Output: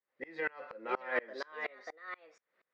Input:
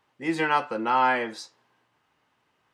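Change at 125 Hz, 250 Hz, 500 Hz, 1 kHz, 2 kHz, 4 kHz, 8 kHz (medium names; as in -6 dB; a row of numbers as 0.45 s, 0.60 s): under -20 dB, -19.0 dB, -8.0 dB, -18.0 dB, -8.5 dB, -15.5 dB, under -15 dB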